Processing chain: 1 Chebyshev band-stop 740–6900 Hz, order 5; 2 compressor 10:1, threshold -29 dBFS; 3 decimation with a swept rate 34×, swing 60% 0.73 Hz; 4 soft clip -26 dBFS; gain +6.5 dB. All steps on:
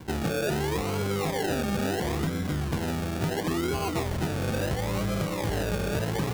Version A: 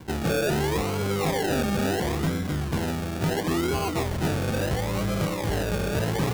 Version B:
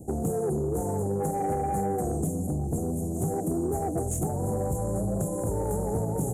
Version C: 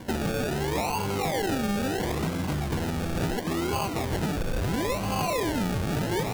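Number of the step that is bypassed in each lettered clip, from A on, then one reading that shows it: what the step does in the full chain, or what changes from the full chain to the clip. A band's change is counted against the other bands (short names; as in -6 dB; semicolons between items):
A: 2, mean gain reduction 3.0 dB; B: 3, 2 kHz band -20.5 dB; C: 1, 1 kHz band +2.5 dB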